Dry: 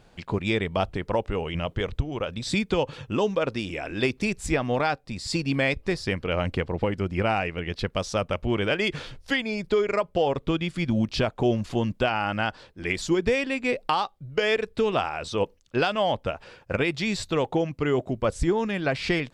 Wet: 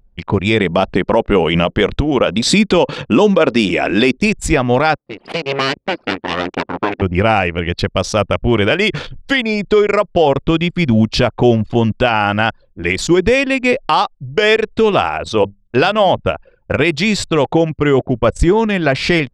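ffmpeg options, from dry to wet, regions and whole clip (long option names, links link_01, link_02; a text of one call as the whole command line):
ffmpeg -i in.wav -filter_complex "[0:a]asettb=1/sr,asplit=3[link_01][link_02][link_03];[link_01]atrim=end=0.594[link_04];[link_02]atrim=start=0.59:end=4.18,asetpts=PTS-STARTPTS,afade=type=in:duration=0.004:curve=qsin,afade=type=out:start_time=3.586:duration=0.004:curve=qsin,lowshelf=frequency=150:width_type=q:width=1.5:gain=-8,acontrast=26[link_05];[link_03]atrim=start=4.176[link_06];[link_04][link_05]acrossfade=duration=0.004:curve1=hsin:curve2=qsin[link_07];[link_07][link_06]acrossfade=duration=0.004:curve1=qsin:curve2=hsin,asettb=1/sr,asplit=3[link_08][link_09][link_10];[link_08]atrim=end=4.974[link_11];[link_09]atrim=start=4.97:end=7.02,asetpts=PTS-STARTPTS,afade=type=in:duration=0.004:curve=qsin,afade=type=out:start_time=2.046:duration=0.004:curve=qsin,aeval=exprs='abs(val(0))':channel_layout=same,highpass=200,lowpass=4100[link_12];[link_10]atrim=start=7.016[link_13];[link_11][link_12]acrossfade=duration=0.004:curve1=hsin:curve2=qsin[link_14];[link_14][link_13]acrossfade=duration=0.004:curve1=qsin:curve2=hsin,asettb=1/sr,asplit=3[link_15][link_16][link_17];[link_15]atrim=end=15.184[link_18];[link_16]atrim=start=15.18:end=16.21,asetpts=PTS-STARTPTS,afade=type=in:duration=0.004:curve=qsin,afade=type=out:start_time=1.026:duration=0.004:curve=qsin,bandreject=frequency=50:width_type=h:width=6,bandreject=frequency=100:width_type=h:width=6,bandreject=frequency=150:width_type=h:width=6,bandreject=frequency=200:width_type=h:width=6,adynamicequalizer=threshold=0.0126:dfrequency=1900:dqfactor=0.7:tfrequency=1900:tqfactor=0.7:attack=5:release=100:ratio=0.375:range=2.5:mode=cutabove:tftype=highshelf[link_19];[link_17]atrim=start=16.206[link_20];[link_18][link_19]acrossfade=duration=0.004:curve1=hsin:curve2=qsin[link_21];[link_21][link_20]acrossfade=duration=0.004:curve1=qsin:curve2=hsin,anlmdn=1,alimiter=level_in=13.5dB:limit=-1dB:release=50:level=0:latency=1,volume=-1.5dB" out.wav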